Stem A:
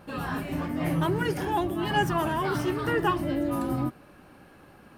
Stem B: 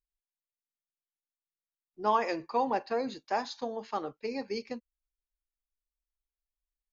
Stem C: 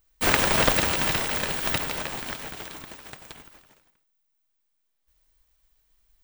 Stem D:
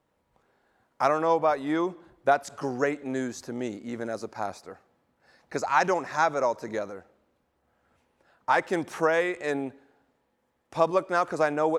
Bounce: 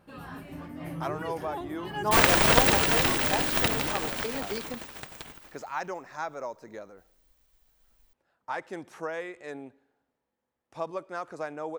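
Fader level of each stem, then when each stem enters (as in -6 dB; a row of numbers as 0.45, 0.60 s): -10.5, -0.5, +0.5, -11.0 dB; 0.00, 0.00, 1.90, 0.00 s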